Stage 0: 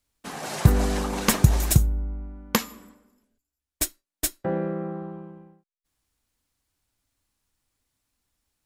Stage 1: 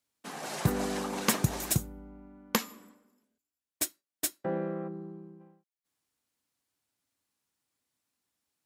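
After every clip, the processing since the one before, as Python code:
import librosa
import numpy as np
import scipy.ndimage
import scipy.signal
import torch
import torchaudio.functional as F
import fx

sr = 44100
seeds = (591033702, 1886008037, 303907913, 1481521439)

y = scipy.signal.sosfilt(scipy.signal.butter(2, 160.0, 'highpass', fs=sr, output='sos'), x)
y = fx.spec_box(y, sr, start_s=4.88, length_s=0.52, low_hz=480.0, high_hz=4000.0, gain_db=-11)
y = y * librosa.db_to_amplitude(-5.0)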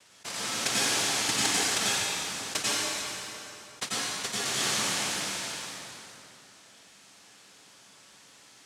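y = fx.noise_vocoder(x, sr, seeds[0], bands=1)
y = fx.rev_plate(y, sr, seeds[1], rt60_s=1.5, hf_ratio=0.9, predelay_ms=80, drr_db=-8.0)
y = fx.env_flatten(y, sr, amount_pct=50)
y = y * librosa.db_to_amplitude(-7.0)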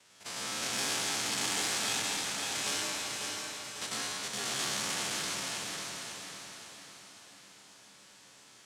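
y = fx.spec_steps(x, sr, hold_ms=50)
y = fx.echo_feedback(y, sr, ms=547, feedback_pct=45, wet_db=-6)
y = fx.transformer_sat(y, sr, knee_hz=3500.0)
y = y * librosa.db_to_amplitude(-2.0)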